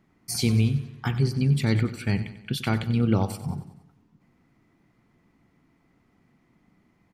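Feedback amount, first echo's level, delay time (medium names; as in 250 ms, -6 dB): 51%, -14.0 dB, 93 ms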